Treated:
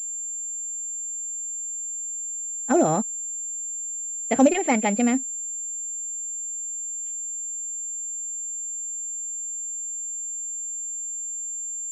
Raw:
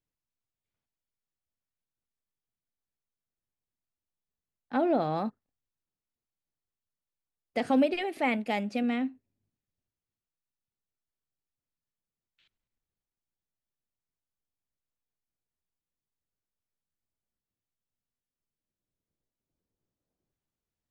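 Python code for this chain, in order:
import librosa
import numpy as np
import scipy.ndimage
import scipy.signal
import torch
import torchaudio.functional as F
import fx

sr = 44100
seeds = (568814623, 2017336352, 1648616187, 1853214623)

y = fx.stretch_vocoder(x, sr, factor=0.57)
y = fx.pwm(y, sr, carrier_hz=7300.0)
y = y * 10.0 ** (8.5 / 20.0)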